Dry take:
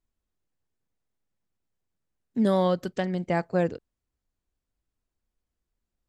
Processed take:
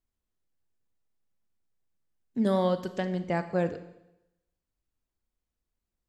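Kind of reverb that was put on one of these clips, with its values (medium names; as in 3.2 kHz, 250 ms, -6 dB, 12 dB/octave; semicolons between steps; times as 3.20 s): Schroeder reverb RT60 0.89 s, combs from 27 ms, DRR 10.5 dB; trim -3 dB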